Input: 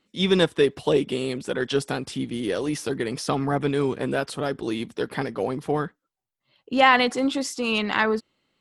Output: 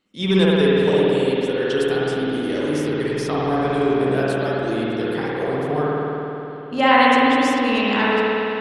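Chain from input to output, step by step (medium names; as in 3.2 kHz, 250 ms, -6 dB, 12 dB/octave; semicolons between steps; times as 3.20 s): spring tank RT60 3.4 s, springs 53 ms, chirp 75 ms, DRR -7 dB; trim -3 dB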